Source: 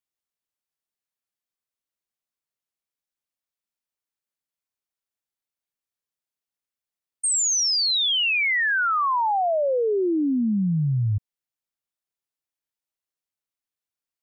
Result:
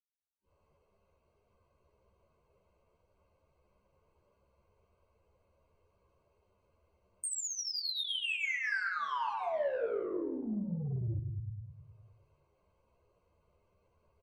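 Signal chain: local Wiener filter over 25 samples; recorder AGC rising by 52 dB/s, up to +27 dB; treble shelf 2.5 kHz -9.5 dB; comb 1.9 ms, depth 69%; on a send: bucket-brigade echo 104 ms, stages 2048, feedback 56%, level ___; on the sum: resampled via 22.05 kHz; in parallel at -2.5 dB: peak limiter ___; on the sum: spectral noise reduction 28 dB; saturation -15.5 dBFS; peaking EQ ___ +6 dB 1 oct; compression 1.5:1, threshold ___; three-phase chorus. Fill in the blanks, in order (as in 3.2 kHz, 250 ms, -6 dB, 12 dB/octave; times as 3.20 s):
-5 dB, -20.5 dBFS, 69 Hz, -49 dBFS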